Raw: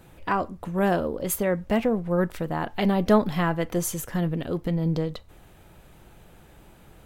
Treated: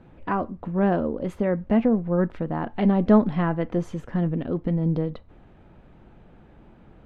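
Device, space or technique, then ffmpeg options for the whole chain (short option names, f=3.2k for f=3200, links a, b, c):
phone in a pocket: -af "lowpass=3.6k,equalizer=f=240:t=o:w=0.66:g=6,highshelf=f=2.4k:g=-11"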